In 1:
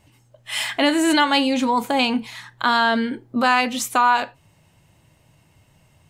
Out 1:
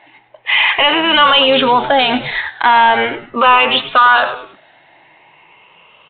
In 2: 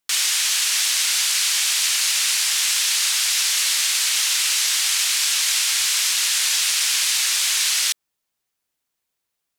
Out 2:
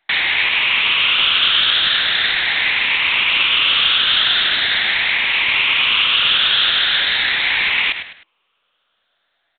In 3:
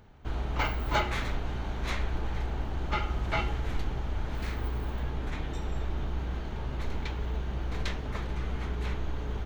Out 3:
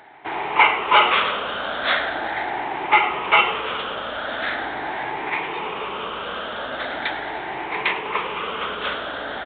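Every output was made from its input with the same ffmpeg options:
ffmpeg -i in.wav -filter_complex "[0:a]afftfilt=real='re*pow(10,10/40*sin(2*PI*(0.77*log(max(b,1)*sr/1024/100)/log(2)-(0.41)*(pts-256)/sr)))':imag='im*pow(10,10/40*sin(2*PI*(0.77*log(max(b,1)*sr/1024/100)/log(2)-(0.41)*(pts-256)/sr)))':win_size=1024:overlap=0.75,highpass=620,asoftclip=type=tanh:threshold=-14.5dB,asplit=4[link_01][link_02][link_03][link_04];[link_02]adelay=103,afreqshift=-110,volume=-15dB[link_05];[link_03]adelay=206,afreqshift=-220,volume=-24.4dB[link_06];[link_04]adelay=309,afreqshift=-330,volume=-33.7dB[link_07];[link_01][link_05][link_06][link_07]amix=inputs=4:normalize=0,alimiter=level_in=18.5dB:limit=-1dB:release=50:level=0:latency=1,volume=-2dB" -ar 8000 -c:a pcm_mulaw out.wav

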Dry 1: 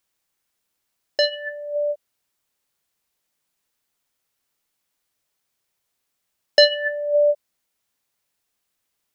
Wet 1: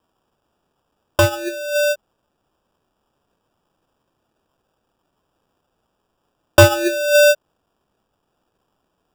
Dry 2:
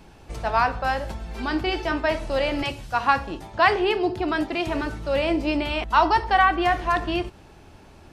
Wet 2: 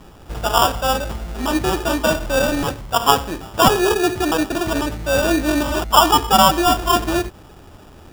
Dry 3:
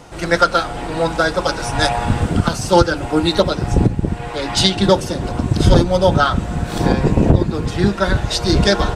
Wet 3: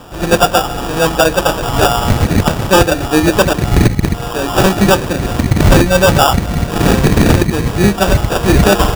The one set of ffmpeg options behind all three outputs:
ffmpeg -i in.wav -af "acrusher=samples=21:mix=1:aa=0.000001,aeval=exprs='0.473*(abs(mod(val(0)/0.473+3,4)-2)-1)':channel_layout=same,volume=5.5dB" out.wav

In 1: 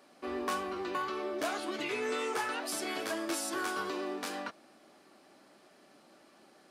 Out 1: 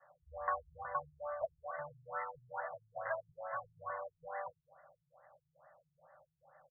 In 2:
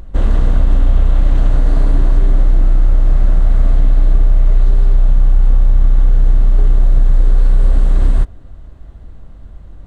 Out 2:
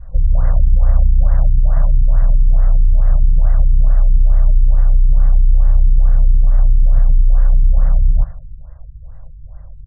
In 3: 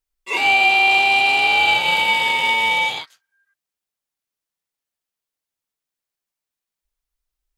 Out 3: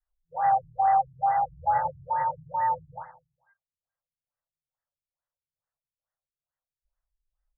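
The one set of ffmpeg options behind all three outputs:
ffmpeg -i in.wav -filter_complex "[0:a]adynamicequalizer=threshold=0.02:dfrequency=400:dqfactor=0.74:tfrequency=400:tqfactor=0.74:attack=5:release=100:ratio=0.375:range=1.5:mode=cutabove:tftype=bell,afftfilt=real='re*(1-between(b*sr/4096,170,490))':imag='im*(1-between(b*sr/4096,170,490))':win_size=4096:overlap=0.75,asplit=2[link_01][link_02];[link_02]aecho=0:1:81|162|243|324|405|486:0.178|0.103|0.0598|0.0347|0.0201|0.0117[link_03];[link_01][link_03]amix=inputs=2:normalize=0,afftfilt=real='re*lt(b*sr/1024,290*pow(2100/290,0.5+0.5*sin(2*PI*2.3*pts/sr)))':imag='im*lt(b*sr/1024,290*pow(2100/290,0.5+0.5*sin(2*PI*2.3*pts/sr)))':win_size=1024:overlap=0.75" out.wav

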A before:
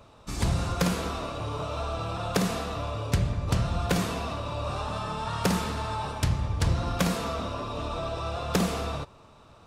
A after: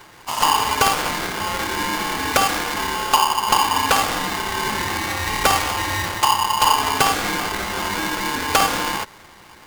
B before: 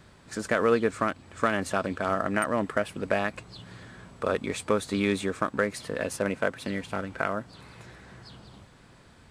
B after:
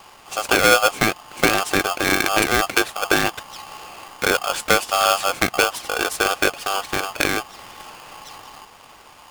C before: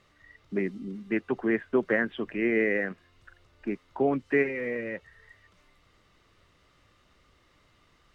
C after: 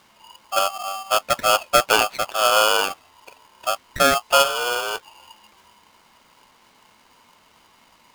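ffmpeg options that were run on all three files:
ffmpeg -i in.wav -af "aeval=exprs='val(0)*sgn(sin(2*PI*970*n/s))':channel_layout=same,volume=8dB" out.wav

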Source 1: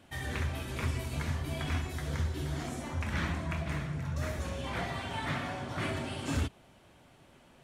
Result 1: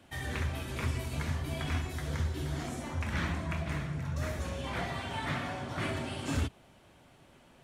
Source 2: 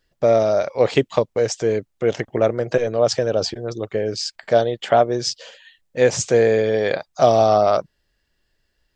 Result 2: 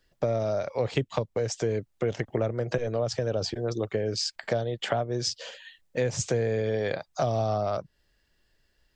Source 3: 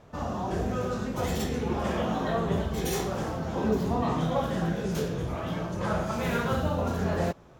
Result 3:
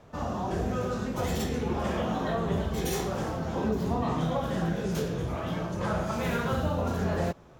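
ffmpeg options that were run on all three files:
ffmpeg -i in.wav -filter_complex "[0:a]acrossover=split=150[link_01][link_02];[link_02]acompressor=threshold=-25dB:ratio=10[link_03];[link_01][link_03]amix=inputs=2:normalize=0" out.wav

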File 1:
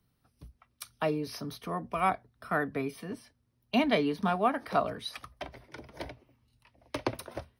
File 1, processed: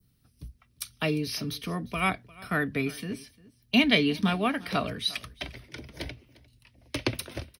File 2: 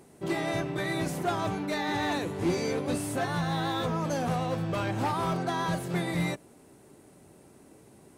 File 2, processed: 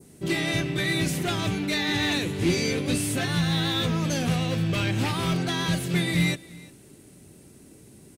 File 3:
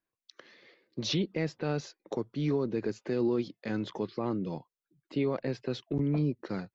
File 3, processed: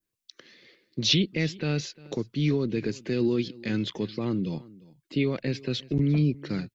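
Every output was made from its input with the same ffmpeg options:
ffmpeg -i in.wav -filter_complex "[0:a]equalizer=frequency=870:width_type=o:width=2.1:gain=-13.5,asplit=2[link_01][link_02];[link_02]aecho=0:1:351:0.0841[link_03];[link_01][link_03]amix=inputs=2:normalize=0,adynamicequalizer=threshold=0.00158:dfrequency=2700:dqfactor=0.94:tfrequency=2700:tqfactor=0.94:attack=5:release=100:ratio=0.375:range=3.5:mode=boostabove:tftype=bell,volume=8dB" out.wav

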